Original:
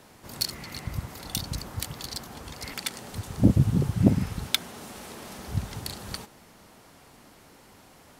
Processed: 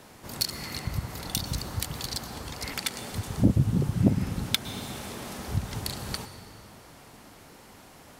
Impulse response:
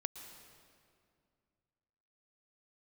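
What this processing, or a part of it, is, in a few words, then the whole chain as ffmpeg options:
compressed reverb return: -filter_complex "[0:a]asplit=2[a][b];[1:a]atrim=start_sample=2205[c];[b][c]afir=irnorm=-1:irlink=0,acompressor=threshold=-30dB:ratio=6,volume=4dB[d];[a][d]amix=inputs=2:normalize=0,volume=-4.5dB"

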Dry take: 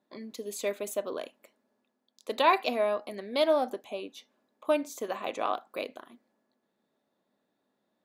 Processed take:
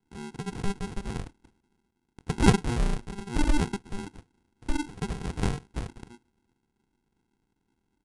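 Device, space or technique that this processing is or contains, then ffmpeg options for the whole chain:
crushed at another speed: -af "asetrate=88200,aresample=44100,acrusher=samples=37:mix=1:aa=0.000001,asetrate=22050,aresample=44100,volume=3dB"

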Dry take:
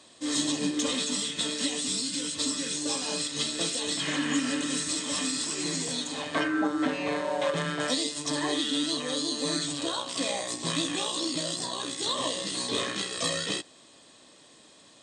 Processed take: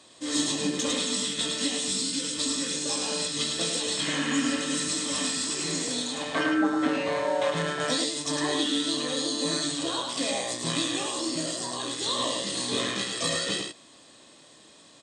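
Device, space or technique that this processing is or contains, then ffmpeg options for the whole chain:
slapback doubling: -filter_complex "[0:a]asettb=1/sr,asplit=3[a][b][c];[a]atrim=end=10.984[d];[b]atrim=start=10.98:end=11.77,asetpts=PTS-STARTPTS,afade=t=in:d=0.004:c=qsin,afade=t=out:st=0.786:d=0.004:c=qsin,equalizer=f=3.6k:t=o:w=0.41:g=-7.5[e];[c]atrim=start=11.766[f];[d][e]acrossfade=d=0.004:c1=hsin:c2=qsin[g];[g][f]acrossfade=d=0.004:c1=qsin:c2=hsin,asplit=3[h][i][j];[i]adelay=25,volume=-8.5dB[k];[j]adelay=106,volume=-4.5dB[l];[h][k][l]amix=inputs=3:normalize=0"

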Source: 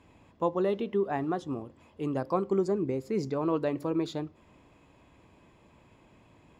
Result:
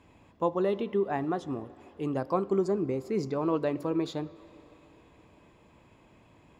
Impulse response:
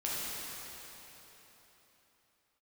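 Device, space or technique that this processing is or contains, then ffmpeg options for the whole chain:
filtered reverb send: -filter_complex "[0:a]asplit=2[a][b];[b]highpass=260,lowpass=4.9k[c];[1:a]atrim=start_sample=2205[d];[c][d]afir=irnorm=-1:irlink=0,volume=-22.5dB[e];[a][e]amix=inputs=2:normalize=0"

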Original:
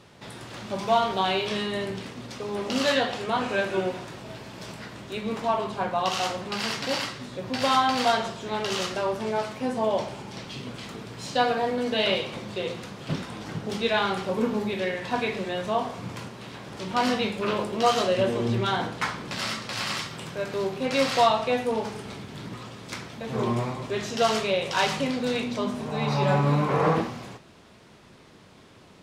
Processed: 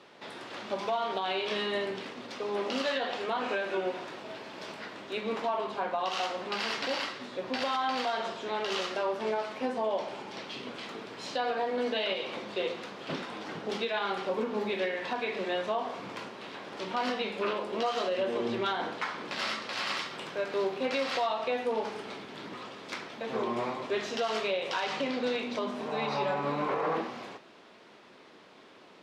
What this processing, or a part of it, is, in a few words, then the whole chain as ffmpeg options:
DJ mixer with the lows and highs turned down: -filter_complex "[0:a]acrossover=split=240 5100:gain=0.0708 1 0.224[a][b][c];[a][b][c]amix=inputs=3:normalize=0,alimiter=limit=-21.5dB:level=0:latency=1:release=184,asettb=1/sr,asplit=3[d][e][f];[d]atrim=end=24.844[g];[e]atrim=start=24.84:end=25.42,asetpts=PTS-STARTPTS,afade=t=in:d=0.004:c=qsin,afade=t=out:st=0.576:d=0.004:c=qsin,lowpass=8.2k[h];[f]atrim=start=25.416[i];[g][h]acrossfade=d=0.004:c1=hsin:c2=qsin[j];[j][i]acrossfade=d=0.004:c1=qsin:c2=hsin"

